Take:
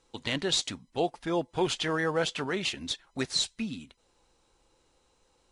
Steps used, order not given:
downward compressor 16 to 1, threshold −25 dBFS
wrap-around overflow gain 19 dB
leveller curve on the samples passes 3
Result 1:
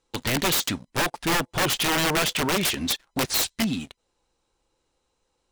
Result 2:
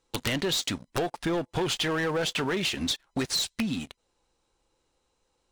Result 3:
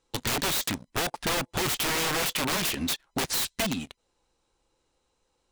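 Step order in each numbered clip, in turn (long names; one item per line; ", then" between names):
downward compressor, then leveller curve on the samples, then wrap-around overflow
leveller curve on the samples, then downward compressor, then wrap-around overflow
leveller curve on the samples, then wrap-around overflow, then downward compressor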